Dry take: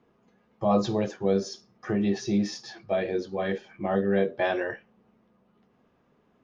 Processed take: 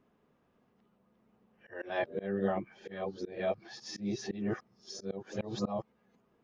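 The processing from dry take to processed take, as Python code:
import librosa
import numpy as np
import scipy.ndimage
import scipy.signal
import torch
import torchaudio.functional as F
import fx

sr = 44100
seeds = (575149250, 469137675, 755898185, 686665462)

y = np.flip(x).copy()
y = fx.auto_swell(y, sr, attack_ms=197.0)
y = F.gain(torch.from_numpy(y), -5.5).numpy()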